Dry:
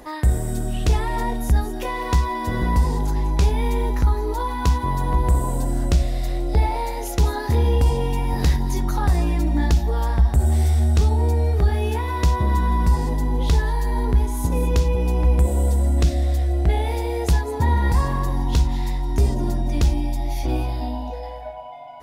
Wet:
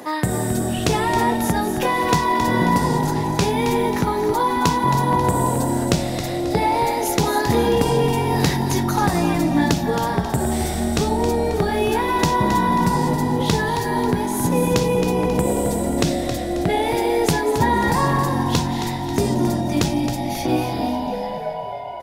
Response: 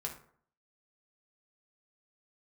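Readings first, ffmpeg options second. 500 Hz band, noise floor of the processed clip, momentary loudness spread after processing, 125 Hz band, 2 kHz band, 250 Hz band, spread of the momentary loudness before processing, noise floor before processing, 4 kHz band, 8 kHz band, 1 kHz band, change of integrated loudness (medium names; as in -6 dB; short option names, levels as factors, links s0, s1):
+7.5 dB, -26 dBFS, 5 LU, -3.0 dB, +7.5 dB, +7.5 dB, 7 LU, -30 dBFS, +7.5 dB, +7.5 dB, +7.5 dB, +1.5 dB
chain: -filter_complex "[0:a]highpass=f=130:w=0.5412,highpass=f=130:w=1.3066,asplit=2[s0][s1];[s1]asplit=5[s2][s3][s4][s5][s6];[s2]adelay=269,afreqshift=-44,volume=0.355[s7];[s3]adelay=538,afreqshift=-88,volume=0.153[s8];[s4]adelay=807,afreqshift=-132,volume=0.0653[s9];[s5]adelay=1076,afreqshift=-176,volume=0.0282[s10];[s6]adelay=1345,afreqshift=-220,volume=0.0122[s11];[s7][s8][s9][s10][s11]amix=inputs=5:normalize=0[s12];[s0][s12]amix=inputs=2:normalize=0,volume=2.24"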